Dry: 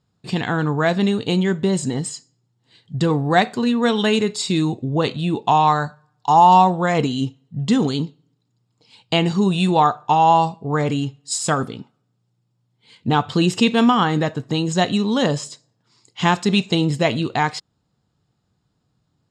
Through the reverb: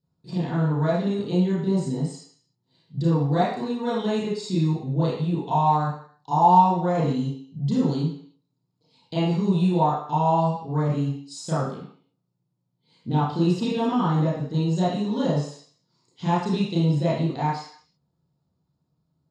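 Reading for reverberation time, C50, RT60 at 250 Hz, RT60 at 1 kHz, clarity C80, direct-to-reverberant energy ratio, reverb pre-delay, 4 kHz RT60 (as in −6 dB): 0.55 s, 1.5 dB, 0.50 s, 0.55 s, 6.0 dB, −11.0 dB, 30 ms, 0.60 s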